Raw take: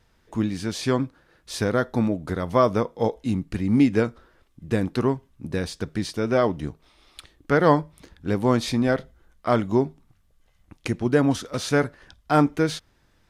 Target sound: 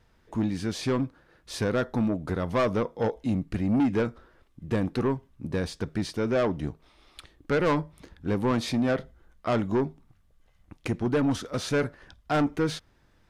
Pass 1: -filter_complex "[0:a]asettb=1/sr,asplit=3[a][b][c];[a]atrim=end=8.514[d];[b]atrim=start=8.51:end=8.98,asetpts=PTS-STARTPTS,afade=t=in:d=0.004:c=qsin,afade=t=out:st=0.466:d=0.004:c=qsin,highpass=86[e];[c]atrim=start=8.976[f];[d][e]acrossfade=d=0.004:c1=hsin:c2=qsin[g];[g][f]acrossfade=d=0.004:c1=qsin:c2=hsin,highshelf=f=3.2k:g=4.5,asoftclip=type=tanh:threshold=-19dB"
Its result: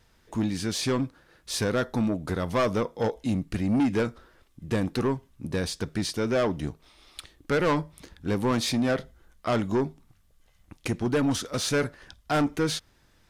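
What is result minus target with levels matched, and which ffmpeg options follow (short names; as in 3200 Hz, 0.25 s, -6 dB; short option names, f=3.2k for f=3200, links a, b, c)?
8000 Hz band +7.5 dB
-filter_complex "[0:a]asettb=1/sr,asplit=3[a][b][c];[a]atrim=end=8.514[d];[b]atrim=start=8.51:end=8.98,asetpts=PTS-STARTPTS,afade=t=in:d=0.004:c=qsin,afade=t=out:st=0.466:d=0.004:c=qsin,highpass=86[e];[c]atrim=start=8.976[f];[d][e]acrossfade=d=0.004:c1=hsin:c2=qsin[g];[g][f]acrossfade=d=0.004:c1=qsin:c2=hsin,highshelf=f=3.2k:g=-5.5,asoftclip=type=tanh:threshold=-19dB"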